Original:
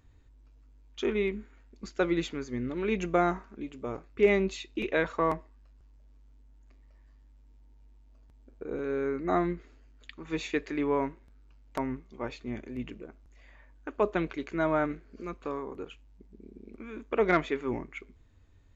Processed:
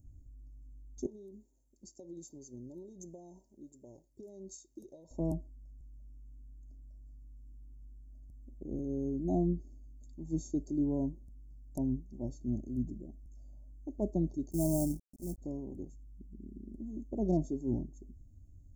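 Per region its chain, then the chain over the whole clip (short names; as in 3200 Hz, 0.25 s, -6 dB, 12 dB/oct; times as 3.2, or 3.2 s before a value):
1.06–5.11 HPF 940 Hz 6 dB/oct + comb 2.1 ms, depth 42% + compressor 5:1, threshold -38 dBFS
14.51–15.38 gate -43 dBFS, range -9 dB + companded quantiser 4-bit
whole clip: inverse Chebyshev band-stop 1200–3100 Hz, stop band 60 dB; comb 1.1 ms, depth 89%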